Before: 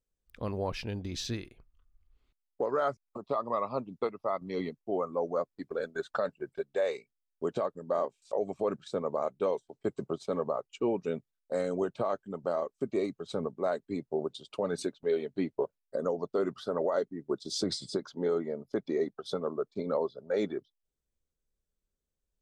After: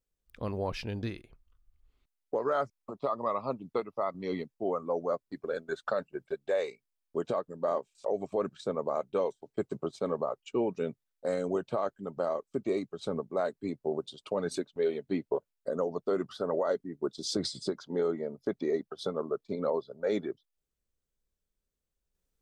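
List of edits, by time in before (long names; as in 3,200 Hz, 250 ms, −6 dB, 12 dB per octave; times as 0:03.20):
0:01.03–0:01.30: remove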